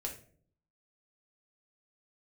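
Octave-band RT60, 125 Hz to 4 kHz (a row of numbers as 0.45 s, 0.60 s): 0.85 s, 0.80 s, 0.60 s, 0.45 s, 0.40 s, 0.30 s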